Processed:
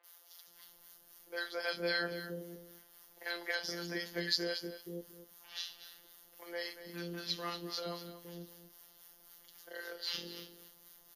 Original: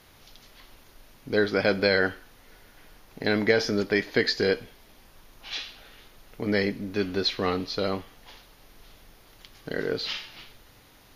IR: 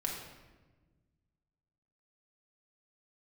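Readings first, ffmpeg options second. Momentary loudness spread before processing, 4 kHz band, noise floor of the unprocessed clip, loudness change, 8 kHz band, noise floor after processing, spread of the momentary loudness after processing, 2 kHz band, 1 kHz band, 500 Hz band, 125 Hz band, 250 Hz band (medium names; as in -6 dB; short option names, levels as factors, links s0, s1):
12 LU, -7.5 dB, -55 dBFS, -13.0 dB, -4.5 dB, -63 dBFS, 22 LU, -11.0 dB, -11.5 dB, -16.0 dB, -14.0 dB, -16.0 dB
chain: -filter_complex "[0:a]asplit=2[s0][s1];[s1]aecho=0:1:233:0.251[s2];[s0][s2]amix=inputs=2:normalize=0,afftfilt=real='hypot(re,im)*cos(PI*b)':imag='0':win_size=1024:overlap=0.75,aemphasis=mode=production:type=bsi,acrossover=split=400|2600[s3][s4][s5];[s5]adelay=40[s6];[s3]adelay=470[s7];[s7][s4][s6]amix=inputs=3:normalize=0,acrossover=split=840[s8][s9];[s8]aeval=exprs='val(0)*(1-0.5/2+0.5/2*cos(2*PI*3.8*n/s))':c=same[s10];[s9]aeval=exprs='val(0)*(1-0.5/2-0.5/2*cos(2*PI*3.8*n/s))':c=same[s11];[s10][s11]amix=inputs=2:normalize=0,volume=0.531"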